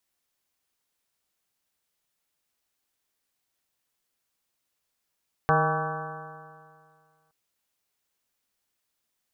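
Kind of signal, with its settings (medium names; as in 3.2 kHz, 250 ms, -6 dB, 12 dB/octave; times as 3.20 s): stretched partials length 1.82 s, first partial 154 Hz, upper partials -13/-2/-4/1.5/-7/1/-8/-3/-13.5 dB, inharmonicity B 0.0025, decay 2.09 s, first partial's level -24 dB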